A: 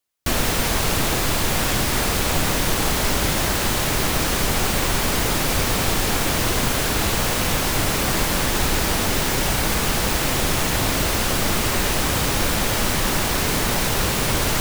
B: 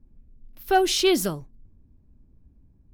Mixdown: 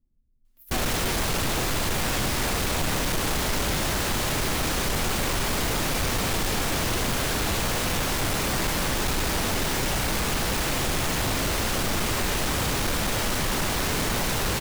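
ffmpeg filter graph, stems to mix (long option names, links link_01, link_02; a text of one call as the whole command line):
ffmpeg -i stem1.wav -i stem2.wav -filter_complex "[0:a]adelay=450,volume=-1.5dB[link_01];[1:a]aexciter=amount=3.3:drive=5.7:freq=7100,volume=-17dB[link_02];[link_01][link_02]amix=inputs=2:normalize=0,highshelf=frequency=11000:gain=-3.5,asoftclip=type=tanh:threshold=-20dB" out.wav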